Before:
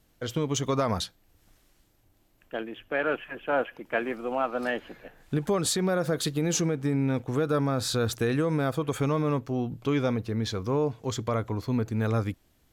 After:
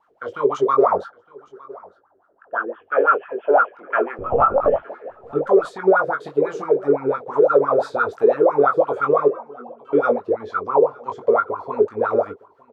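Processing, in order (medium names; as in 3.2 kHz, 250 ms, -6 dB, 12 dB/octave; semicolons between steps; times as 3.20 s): 0.96–2.80 s: resonant high shelf 1.9 kHz -6.5 dB, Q 3; 9.28–9.93 s: inharmonic resonator 230 Hz, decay 0.33 s, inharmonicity 0.008; wah-wah 5.9 Hz 390–1400 Hz, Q 19; 4.18–4.83 s: LPC vocoder at 8 kHz pitch kept; doubling 21 ms -5 dB; delay 911 ms -23.5 dB; loudness maximiser +29.5 dB; trim -4.5 dB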